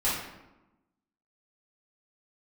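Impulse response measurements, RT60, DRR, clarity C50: 1.0 s, −11.0 dB, 1.0 dB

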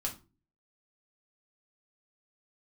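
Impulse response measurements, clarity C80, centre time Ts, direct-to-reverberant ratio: 19.5 dB, 15 ms, −1.5 dB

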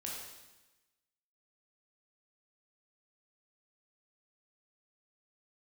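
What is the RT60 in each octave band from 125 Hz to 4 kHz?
1.2, 1.2, 1.1, 1.1, 1.1, 1.1 seconds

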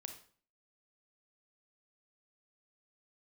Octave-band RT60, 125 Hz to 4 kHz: 0.55, 0.55, 0.45, 0.45, 0.40, 0.40 seconds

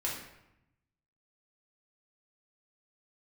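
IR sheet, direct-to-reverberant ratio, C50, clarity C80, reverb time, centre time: −5.0 dB, 3.0 dB, 6.5 dB, 0.85 s, 47 ms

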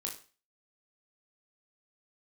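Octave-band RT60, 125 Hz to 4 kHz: 0.40, 0.35, 0.35, 0.40, 0.35, 0.35 seconds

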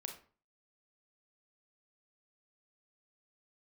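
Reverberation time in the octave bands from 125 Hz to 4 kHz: 0.50, 0.45, 0.40, 0.40, 0.35, 0.30 seconds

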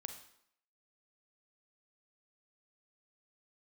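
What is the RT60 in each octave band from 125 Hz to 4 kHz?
0.55, 0.70, 0.65, 0.70, 0.65, 0.65 seconds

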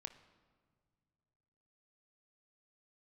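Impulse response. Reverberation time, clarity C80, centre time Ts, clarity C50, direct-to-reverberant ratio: non-exponential decay, 14.5 dB, 10 ms, 12.5 dB, 8.0 dB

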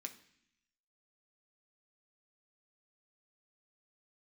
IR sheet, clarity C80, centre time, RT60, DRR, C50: 16.5 dB, 9 ms, 0.65 s, 4.0 dB, 13.5 dB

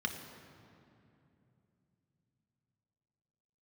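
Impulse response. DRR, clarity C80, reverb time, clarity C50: 3.5 dB, 8.0 dB, 2.8 s, 7.0 dB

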